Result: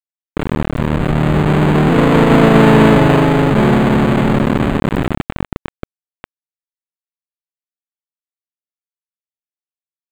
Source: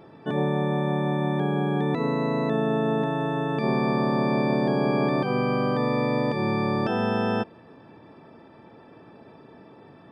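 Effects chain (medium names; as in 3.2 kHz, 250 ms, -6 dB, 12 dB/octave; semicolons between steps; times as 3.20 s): square wave that keeps the level; Doppler pass-by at 2.65 s, 11 m/s, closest 5.6 m; bit crusher 5-bit; loudness maximiser +15 dB; decimation joined by straight lines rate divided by 8×; trim -1 dB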